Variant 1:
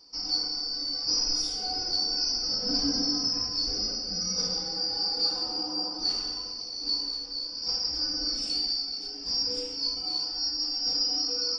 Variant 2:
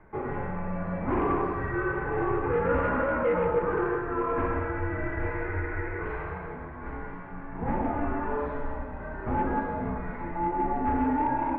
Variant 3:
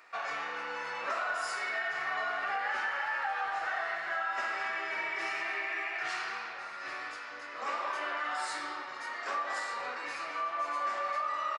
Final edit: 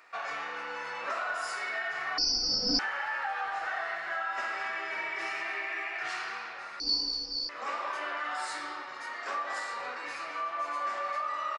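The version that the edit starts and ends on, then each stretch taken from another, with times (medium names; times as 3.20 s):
3
2.18–2.79 s: from 1
6.80–7.49 s: from 1
not used: 2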